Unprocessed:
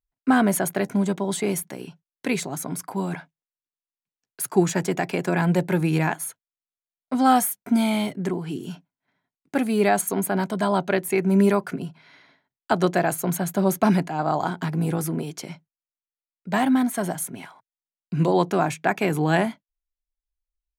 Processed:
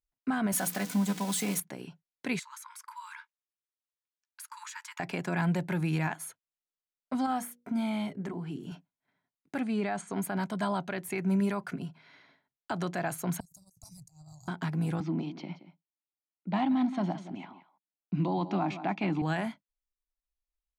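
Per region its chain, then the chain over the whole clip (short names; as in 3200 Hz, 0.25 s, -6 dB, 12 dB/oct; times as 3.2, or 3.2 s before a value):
0.52–1.6 switching spikes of -20.5 dBFS + notches 60/120/180/240/300/360/420/480 Hz + comb 4 ms, depth 54%
2.39–5 brick-wall FIR high-pass 870 Hz + compressor 2.5:1, threshold -35 dBFS
7.26–8.72 high shelf 2200 Hz -7.5 dB + compressor 2:1, threshold -21 dBFS + notches 60/120/180/240/300/360/420/480/540 Hz
9.59–10.16 steep low-pass 9300 Hz 48 dB/oct + high shelf 4100 Hz -8.5 dB
13.4–14.48 inverse Chebyshev band-stop 200–3300 Hz + expander -49 dBFS + negative-ratio compressor -48 dBFS
15–19.22 low-pass opened by the level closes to 2000 Hz, open at -21 dBFS + speaker cabinet 170–4700 Hz, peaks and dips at 190 Hz +8 dB, 310 Hz +10 dB, 450 Hz -7 dB, 830 Hz +5 dB, 1600 Hz -10 dB + echo 0.175 s -15.5 dB
whole clip: high shelf 10000 Hz -10 dB; limiter -13.5 dBFS; dynamic EQ 430 Hz, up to -7 dB, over -37 dBFS, Q 1.2; gain -5 dB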